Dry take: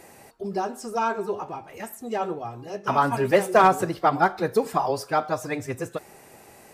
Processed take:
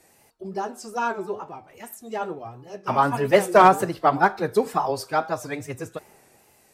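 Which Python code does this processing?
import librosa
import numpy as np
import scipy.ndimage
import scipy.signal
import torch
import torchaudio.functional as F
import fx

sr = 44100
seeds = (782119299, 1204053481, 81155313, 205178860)

y = fx.wow_flutter(x, sr, seeds[0], rate_hz=2.1, depth_cents=82.0)
y = fx.band_widen(y, sr, depth_pct=40)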